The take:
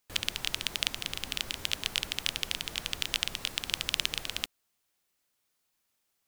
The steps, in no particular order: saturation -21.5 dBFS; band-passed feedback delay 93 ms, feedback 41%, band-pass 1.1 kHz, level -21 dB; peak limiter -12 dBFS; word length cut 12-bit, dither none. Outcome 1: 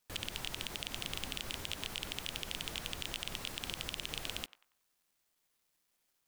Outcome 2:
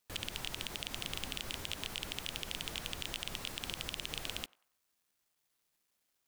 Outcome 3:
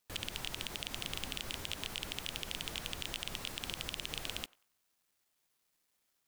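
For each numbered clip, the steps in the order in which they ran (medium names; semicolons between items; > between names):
word length cut > band-passed feedback delay > peak limiter > saturation; peak limiter > saturation > word length cut > band-passed feedback delay; peak limiter > saturation > band-passed feedback delay > word length cut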